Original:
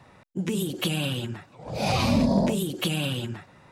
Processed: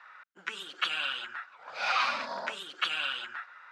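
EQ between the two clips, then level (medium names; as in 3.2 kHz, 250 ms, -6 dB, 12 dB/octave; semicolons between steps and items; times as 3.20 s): resonant high-pass 1.4 kHz, resonance Q 5.4; distance through air 150 m; 0.0 dB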